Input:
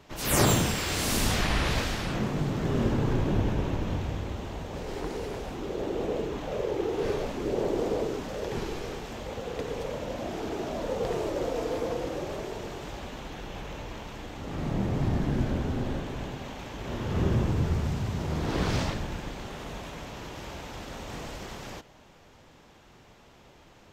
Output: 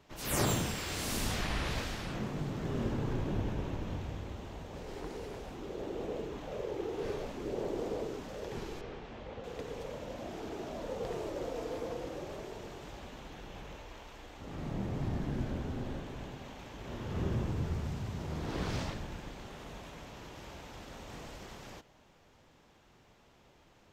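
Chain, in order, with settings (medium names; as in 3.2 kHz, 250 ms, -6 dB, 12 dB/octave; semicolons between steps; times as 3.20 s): 8.81–9.44 s: low-pass 3.4 kHz 12 dB/octave; 13.77–14.41 s: peaking EQ 160 Hz -9.5 dB 1.5 oct; trim -8 dB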